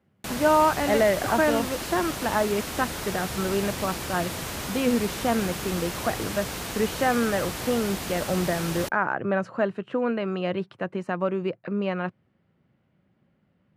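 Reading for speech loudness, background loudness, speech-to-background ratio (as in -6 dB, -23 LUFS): -26.5 LUFS, -32.0 LUFS, 5.5 dB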